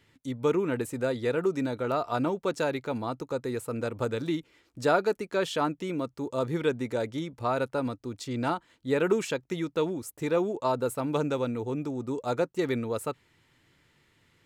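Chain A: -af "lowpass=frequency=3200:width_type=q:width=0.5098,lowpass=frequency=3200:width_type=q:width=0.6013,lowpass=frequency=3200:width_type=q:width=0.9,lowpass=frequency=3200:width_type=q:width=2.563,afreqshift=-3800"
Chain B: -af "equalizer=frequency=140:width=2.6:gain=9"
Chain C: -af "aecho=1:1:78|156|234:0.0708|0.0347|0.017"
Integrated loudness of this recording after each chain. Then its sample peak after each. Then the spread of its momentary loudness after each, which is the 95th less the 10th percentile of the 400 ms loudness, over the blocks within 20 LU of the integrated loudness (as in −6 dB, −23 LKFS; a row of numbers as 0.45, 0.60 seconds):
−26.5, −29.0, −30.0 LKFS; −10.5, −11.5, −11.5 dBFS; 7, 6, 7 LU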